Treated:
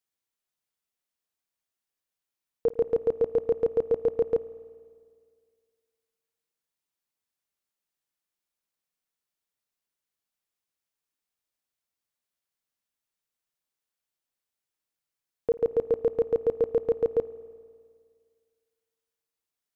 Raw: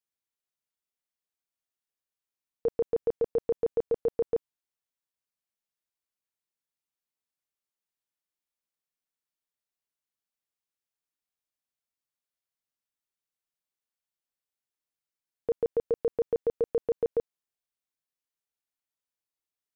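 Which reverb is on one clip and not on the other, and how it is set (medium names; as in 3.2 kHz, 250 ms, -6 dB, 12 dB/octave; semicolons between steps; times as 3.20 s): spring tank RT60 2 s, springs 51 ms, chirp 35 ms, DRR 15.5 dB; trim +3 dB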